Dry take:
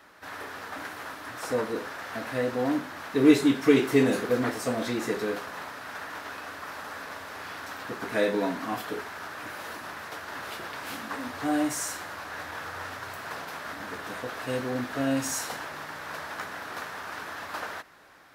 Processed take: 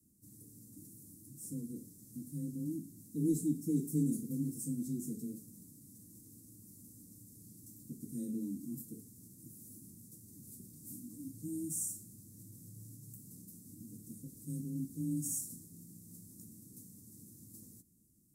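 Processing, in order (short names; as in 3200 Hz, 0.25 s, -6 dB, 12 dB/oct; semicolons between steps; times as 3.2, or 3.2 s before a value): frequency shift +21 Hz; elliptic band-stop 230–8100 Hz, stop band 50 dB; gain -1 dB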